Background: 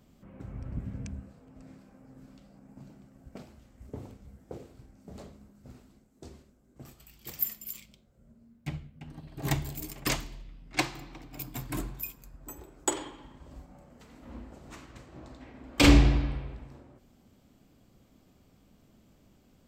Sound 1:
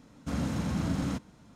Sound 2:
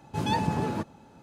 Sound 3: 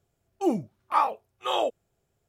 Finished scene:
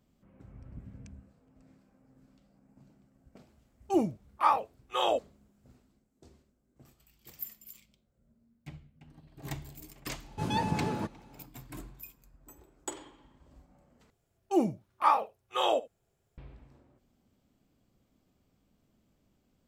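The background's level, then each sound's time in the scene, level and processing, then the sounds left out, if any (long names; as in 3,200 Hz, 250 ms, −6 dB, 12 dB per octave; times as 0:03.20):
background −10 dB
0:03.49: mix in 3 −2 dB
0:10.24: mix in 2 −3.5 dB
0:14.10: overwrite with 3 −1.5 dB + single-tap delay 74 ms −19.5 dB
not used: 1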